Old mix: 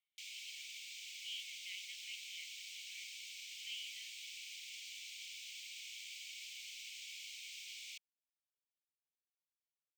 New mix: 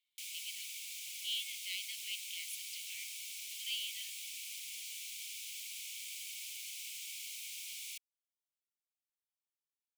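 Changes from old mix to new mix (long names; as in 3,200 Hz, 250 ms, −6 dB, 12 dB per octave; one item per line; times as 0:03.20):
speech: remove high-frequency loss of the air 360 metres
master: remove moving average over 4 samples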